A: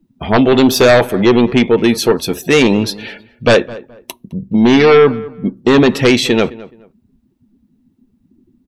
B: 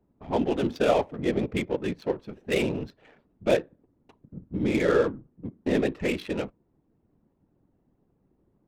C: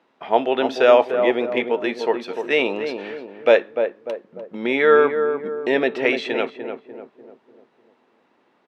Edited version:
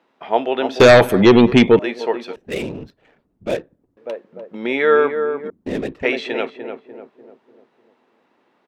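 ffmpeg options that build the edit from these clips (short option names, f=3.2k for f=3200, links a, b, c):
-filter_complex "[1:a]asplit=2[a][b];[2:a]asplit=4[c][d][e][f];[c]atrim=end=0.802[g];[0:a]atrim=start=0.798:end=1.792[h];[d]atrim=start=1.788:end=2.362[i];[a]atrim=start=2.358:end=3.972[j];[e]atrim=start=3.968:end=5.502[k];[b]atrim=start=5.498:end=6.032[l];[f]atrim=start=6.028[m];[g][h]acrossfade=d=0.004:c1=hsin:c2=hsin[n];[n][i]acrossfade=d=0.004:c1=hsin:c2=hsin[o];[o][j]acrossfade=d=0.004:c1=hsin:c2=hsin[p];[p][k]acrossfade=d=0.004:c1=hsin:c2=hsin[q];[q][l]acrossfade=d=0.004:c1=hsin:c2=hsin[r];[r][m]acrossfade=d=0.004:c1=hsin:c2=hsin"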